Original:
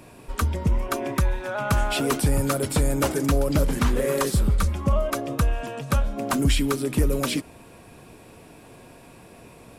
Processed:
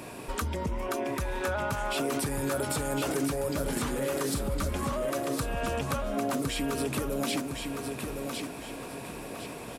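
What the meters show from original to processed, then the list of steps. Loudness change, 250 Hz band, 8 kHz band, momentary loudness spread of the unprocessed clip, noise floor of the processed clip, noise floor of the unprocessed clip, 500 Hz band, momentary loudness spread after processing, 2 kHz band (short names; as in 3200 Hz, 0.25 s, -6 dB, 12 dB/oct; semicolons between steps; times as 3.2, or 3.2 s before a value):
-7.0 dB, -5.5 dB, -4.0 dB, 5 LU, -41 dBFS, -48 dBFS, -4.0 dB, 8 LU, -3.5 dB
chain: low shelf 110 Hz -11.5 dB; limiter -22.5 dBFS, peak gain reduction 11 dB; compressor, threshold -35 dBFS, peak gain reduction 8.5 dB; feedback echo 1.06 s, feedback 36%, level -5 dB; gain +6.5 dB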